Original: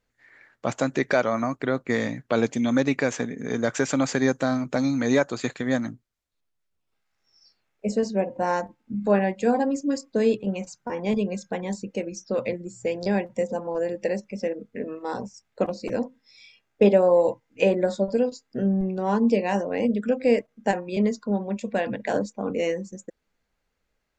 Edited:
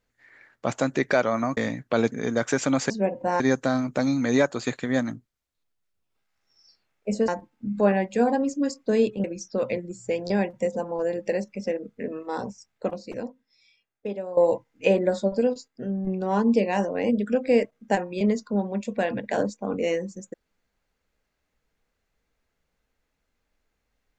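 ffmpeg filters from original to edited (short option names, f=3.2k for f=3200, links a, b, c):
-filter_complex "[0:a]asplit=10[a][b][c][d][e][f][g][h][i][j];[a]atrim=end=1.572[k];[b]atrim=start=1.958:end=2.512[l];[c]atrim=start=3.388:end=4.172[m];[d]atrim=start=8.048:end=8.552[n];[e]atrim=start=4.168:end=8.052[o];[f]atrim=start=8.548:end=10.512[p];[g]atrim=start=11.998:end=17.13,asetpts=PTS-STARTPTS,afade=t=out:st=3.212:d=1.92:c=qua:silence=0.16788[q];[h]atrim=start=17.13:end=18.442,asetpts=PTS-STARTPTS,afade=t=in:d=0.004:c=hsin:silence=0.16788[r];[i]atrim=start=18.438:end=18.832,asetpts=PTS-STARTPTS,volume=-6dB[s];[j]atrim=start=18.828[t];[k][l]acrossfade=d=0.004:c1=hsin:c2=hsin[u];[u][m]acrossfade=d=0.004:c1=hsin:c2=hsin[v];[v][n]acrossfade=d=0.004:c1=hsin:c2=hsin[w];[w][o]acrossfade=d=0.004:c1=hsin:c2=hsin[x];[x][p]acrossfade=d=0.004:c1=hsin:c2=hsin[y];[q][r]concat=n=2:v=0:a=1[z];[y][z]acrossfade=d=0.004:c1=hsin:c2=hsin[aa];[aa][s]acrossfade=d=0.004:c1=hsin:c2=hsin[ab];[ab][t]acrossfade=d=0.004:c1=hsin:c2=hsin"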